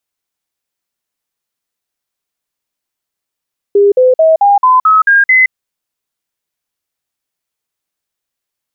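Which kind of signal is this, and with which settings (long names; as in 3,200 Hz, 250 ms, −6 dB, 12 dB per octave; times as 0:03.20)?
stepped sweep 404 Hz up, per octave 3, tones 8, 0.17 s, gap 0.05 s −4 dBFS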